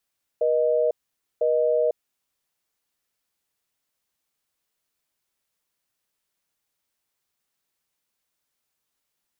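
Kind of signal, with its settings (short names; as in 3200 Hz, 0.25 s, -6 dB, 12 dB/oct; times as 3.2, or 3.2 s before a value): call progress tone busy tone, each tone -21 dBFS 1.74 s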